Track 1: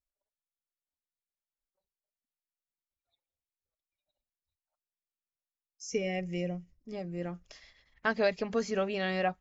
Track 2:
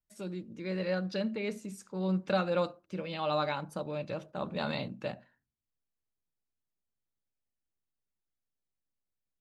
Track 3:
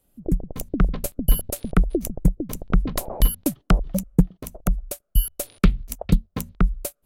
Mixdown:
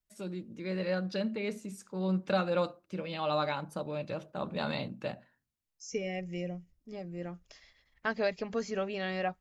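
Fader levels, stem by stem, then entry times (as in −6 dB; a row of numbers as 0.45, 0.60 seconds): −3.0 dB, 0.0 dB, muted; 0.00 s, 0.00 s, muted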